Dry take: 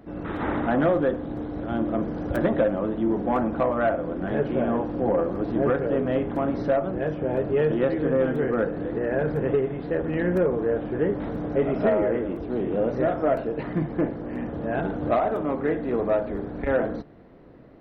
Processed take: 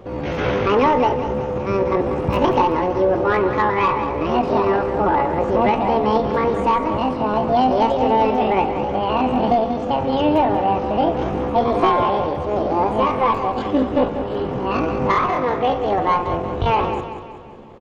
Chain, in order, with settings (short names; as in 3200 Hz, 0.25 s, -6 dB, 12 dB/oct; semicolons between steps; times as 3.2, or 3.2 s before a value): low shelf 240 Hz +8.5 dB; pitch shift +9 st; on a send: feedback echo 0.188 s, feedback 48%, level -10 dB; on the sum: gain +3 dB